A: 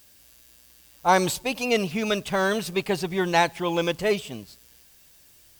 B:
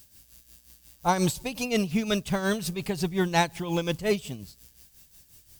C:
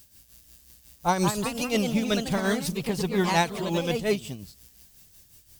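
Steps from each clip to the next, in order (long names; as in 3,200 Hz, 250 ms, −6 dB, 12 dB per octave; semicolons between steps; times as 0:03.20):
bass and treble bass +11 dB, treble +6 dB; amplitude tremolo 5.6 Hz, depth 67%; level −3 dB
delay with pitch and tempo change per echo 294 ms, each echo +2 semitones, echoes 3, each echo −6 dB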